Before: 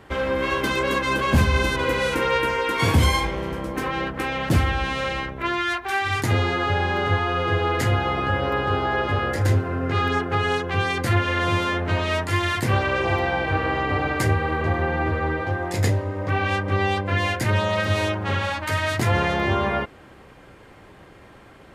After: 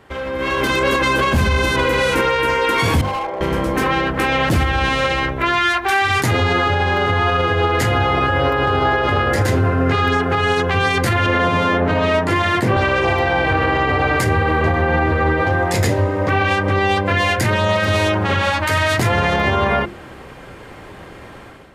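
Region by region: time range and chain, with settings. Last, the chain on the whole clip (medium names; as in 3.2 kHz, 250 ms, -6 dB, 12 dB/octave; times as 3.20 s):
3.01–3.41 s: band-pass filter 700 Hz, Q 2.2 + hard clipper -29.5 dBFS
11.26–12.77 s: high-pass 210 Hz + tilt EQ -3 dB/octave
whole clip: hum notches 50/100/150/200/250/300/350 Hz; peak limiter -18.5 dBFS; level rider gain up to 10.5 dB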